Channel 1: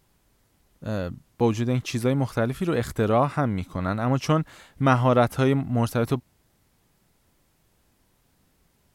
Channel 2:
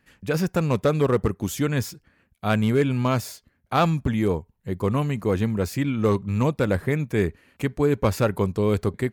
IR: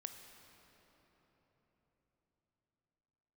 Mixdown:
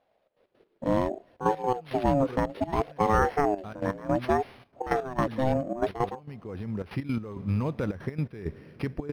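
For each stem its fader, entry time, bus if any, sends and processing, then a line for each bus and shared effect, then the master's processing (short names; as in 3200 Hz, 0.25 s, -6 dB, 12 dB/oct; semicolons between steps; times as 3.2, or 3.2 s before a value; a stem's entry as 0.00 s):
-8.0 dB, 0.00 s, send -23 dB, tone controls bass +5 dB, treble +2 dB; AGC gain up to 13 dB; ring modulator with a swept carrier 520 Hz, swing 25%, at 0.64 Hz
6.42 s -14 dB -> 7.02 s -2.5 dB, 1.20 s, send -8.5 dB, limiter -18.5 dBFS, peak gain reduction 10 dB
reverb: on, RT60 4.5 s, pre-delay 18 ms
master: step gate "xxx.x.x..xxx" 165 bpm -12 dB; decimation joined by straight lines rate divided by 6×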